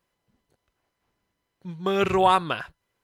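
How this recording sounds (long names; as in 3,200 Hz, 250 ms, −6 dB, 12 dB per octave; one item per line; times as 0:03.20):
background noise floor −80 dBFS
spectral slope −3.5 dB per octave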